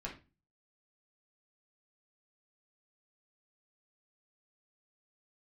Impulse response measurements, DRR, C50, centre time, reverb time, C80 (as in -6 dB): -3.5 dB, 9.0 dB, 20 ms, 0.30 s, 15.5 dB